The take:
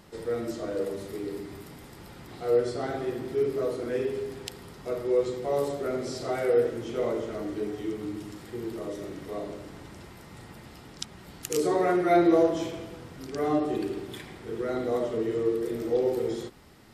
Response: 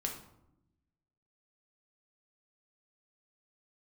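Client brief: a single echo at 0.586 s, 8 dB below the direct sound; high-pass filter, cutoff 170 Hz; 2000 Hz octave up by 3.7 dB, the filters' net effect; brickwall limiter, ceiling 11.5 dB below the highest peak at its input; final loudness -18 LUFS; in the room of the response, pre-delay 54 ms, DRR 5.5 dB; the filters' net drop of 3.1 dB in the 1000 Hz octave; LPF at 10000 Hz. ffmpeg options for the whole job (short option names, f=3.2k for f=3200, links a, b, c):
-filter_complex "[0:a]highpass=170,lowpass=10k,equalizer=f=1k:t=o:g=-7,equalizer=f=2k:t=o:g=6.5,alimiter=limit=-23.5dB:level=0:latency=1,aecho=1:1:586:0.398,asplit=2[a][b];[1:a]atrim=start_sample=2205,adelay=54[c];[b][c]afir=irnorm=-1:irlink=0,volume=-7dB[d];[a][d]amix=inputs=2:normalize=0,volume=14dB"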